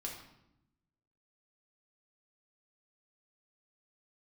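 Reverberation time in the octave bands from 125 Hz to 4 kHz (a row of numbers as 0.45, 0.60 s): 1.4, 1.2, 0.85, 0.80, 0.70, 0.65 s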